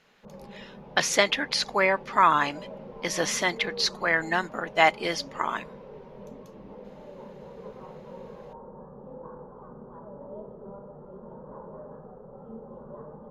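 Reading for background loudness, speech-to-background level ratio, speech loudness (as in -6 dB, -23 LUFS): -44.0 LUFS, 19.0 dB, -25.0 LUFS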